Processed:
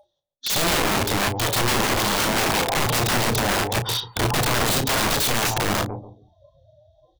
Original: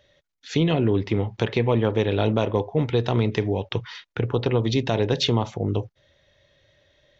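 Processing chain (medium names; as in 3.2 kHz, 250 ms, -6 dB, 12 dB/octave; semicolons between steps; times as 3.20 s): FFT filter 470 Hz 0 dB, 830 Hz +14 dB, 2.2 kHz -18 dB, 3.5 kHz +10 dB; in parallel at -2.5 dB: compressor with a negative ratio -27 dBFS, ratio -1; on the sum: overload inside the chain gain 13 dB; on a send: filtered feedback delay 140 ms, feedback 29%, low-pass 960 Hz, level -8 dB; on the sum: spectral noise reduction 29 dB; integer overflow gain 16.5 dB; doubling 34 ms -9.5 dB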